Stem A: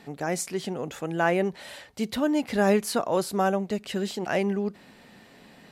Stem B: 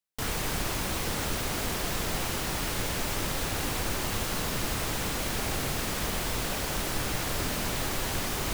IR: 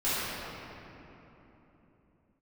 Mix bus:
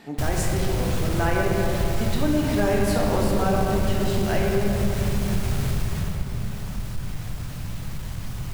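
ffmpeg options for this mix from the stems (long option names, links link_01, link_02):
-filter_complex "[0:a]volume=-0.5dB,asplit=2[link_01][link_02];[link_02]volume=-6.5dB[link_03];[1:a]lowshelf=frequency=220:width_type=q:width=1.5:gain=12.5,asoftclip=type=tanh:threshold=-12.5dB,afade=type=out:start_time=5.65:duration=0.54:silence=0.266073,asplit=2[link_04][link_05];[link_05]volume=-15.5dB[link_06];[2:a]atrim=start_sample=2205[link_07];[link_03][link_06]amix=inputs=2:normalize=0[link_08];[link_08][link_07]afir=irnorm=-1:irlink=0[link_09];[link_01][link_04][link_09]amix=inputs=3:normalize=0,acompressor=threshold=-22dB:ratio=2"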